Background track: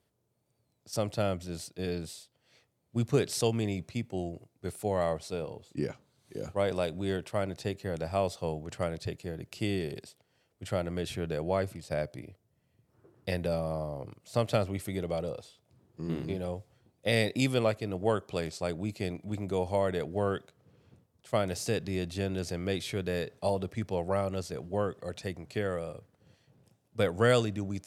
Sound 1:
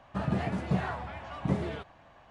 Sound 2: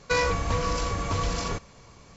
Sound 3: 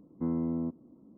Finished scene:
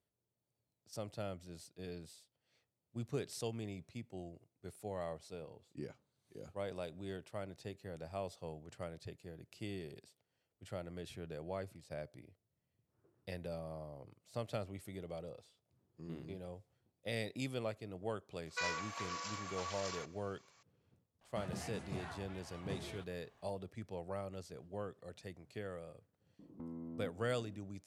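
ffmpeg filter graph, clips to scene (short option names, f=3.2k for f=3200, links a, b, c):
-filter_complex "[0:a]volume=-13dB[a];[2:a]highpass=1k[b];[1:a]aemphasis=mode=production:type=75kf[c];[3:a]acompressor=threshold=-40dB:ratio=10:attack=0.7:release=225:knee=1:detection=peak[d];[b]atrim=end=2.16,asetpts=PTS-STARTPTS,volume=-11dB,afade=t=in:d=0.004:c=hsin,afade=t=out:st=2.156:d=0.004:c=hsin,adelay=18470[e];[c]atrim=end=2.3,asetpts=PTS-STARTPTS,volume=-15dB,afade=t=in:d=0.004:c=hsin,afade=t=out:st=2.296:d=0.004:c=hsin,adelay=21210[f];[d]atrim=end=1.17,asetpts=PTS-STARTPTS,volume=-2dB,afade=t=in:d=0.004:c=hsin,afade=t=out:st=1.166:d=0.004:c=hsin,adelay=26390[g];[a][e][f][g]amix=inputs=4:normalize=0"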